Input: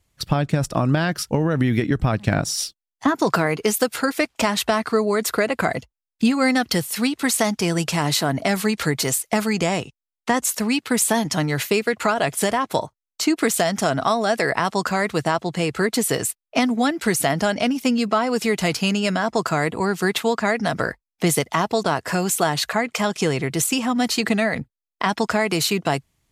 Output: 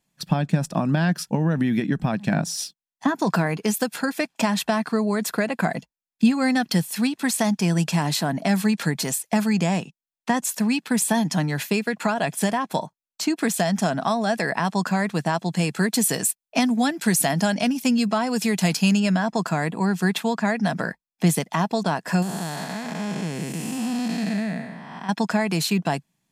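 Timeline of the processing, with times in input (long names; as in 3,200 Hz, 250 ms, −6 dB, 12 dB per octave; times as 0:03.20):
0:15.33–0:19.00: high-shelf EQ 4,200 Hz +7.5 dB
0:22.22–0:25.09: spectrum smeared in time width 418 ms
whole clip: low shelf with overshoot 120 Hz −13.5 dB, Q 3; comb filter 1.2 ms, depth 33%; level −4.5 dB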